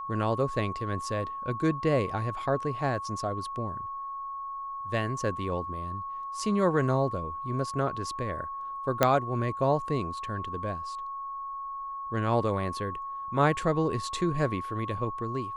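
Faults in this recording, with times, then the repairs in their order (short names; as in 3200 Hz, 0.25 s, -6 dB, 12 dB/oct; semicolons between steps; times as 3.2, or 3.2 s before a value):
tone 1100 Hz -34 dBFS
9.03 pop -7 dBFS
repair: de-click; notch 1100 Hz, Q 30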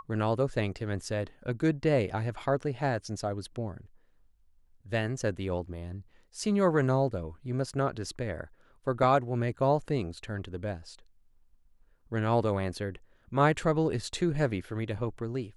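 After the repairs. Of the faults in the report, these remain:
none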